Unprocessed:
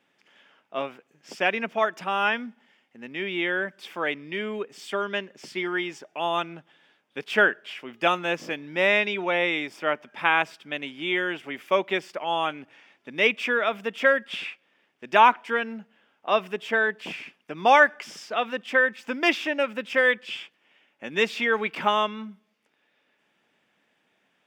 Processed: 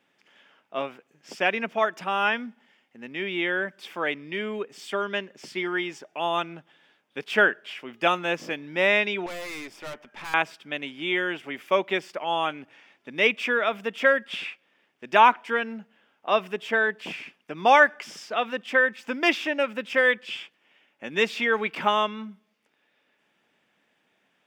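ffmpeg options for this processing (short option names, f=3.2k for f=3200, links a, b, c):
-filter_complex "[0:a]asettb=1/sr,asplit=3[a][b][c];[a]atrim=end=9.264[d];[b]atrim=start=9.26:end=10.34,asetpts=PTS-STARTPTS,afade=t=in:d=0.004:c=qsin,afade=t=out:st=1.076:d=0.004:c=qsin,aeval=exprs='(tanh(50.1*val(0)+0.45)-tanh(0.45))/50.1':c=same[e];[c]atrim=start=10.336[f];[d][e]acrossfade=d=0.004:c1=hsin:c2=qsin[g];[g][f]acrossfade=d=0.004:c1=qsin:c2=hsin"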